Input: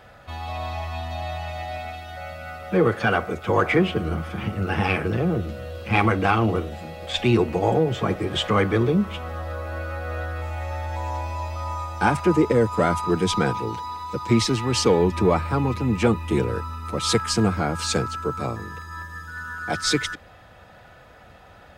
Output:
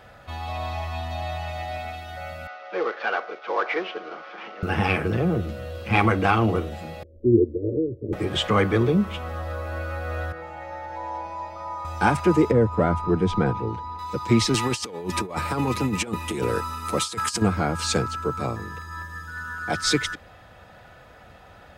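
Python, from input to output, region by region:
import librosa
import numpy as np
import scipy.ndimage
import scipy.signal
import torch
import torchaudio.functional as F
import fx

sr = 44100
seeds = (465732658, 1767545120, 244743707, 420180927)

y = fx.chain(x, sr, fx.cvsd(bps=32000),
    fx.bessel_highpass(hz=590.0, order=4),
    fx.air_absorb(metres=230.0), at=(2.47, 4.63))
y = fx.chain(y, sr, fx.cheby1_lowpass(hz=560.0, order=8),
    fx.comb(ms=2.9, depth=0.86),
    fx.upward_expand(threshold_db=-36.0, expansion=1.5), at=(7.03, 8.13))
y = fx.chain(y, sr, fx.lowpass(hz=1200.0, slope=6),
    fx.low_shelf(hz=350.0, db=-9.0),
    fx.comb(ms=5.9, depth=0.69), at=(10.32, 11.85))
y = fx.chain(y, sr, fx.lowpass(hz=1100.0, slope=6),
    fx.low_shelf(hz=67.0, db=10.0), at=(12.51, 13.99))
y = fx.chain(y, sr, fx.highpass(hz=200.0, slope=6),
    fx.peak_eq(hz=9900.0, db=8.5, octaves=1.8),
    fx.over_compress(threshold_db=-25.0, ratio=-0.5), at=(14.54, 17.42))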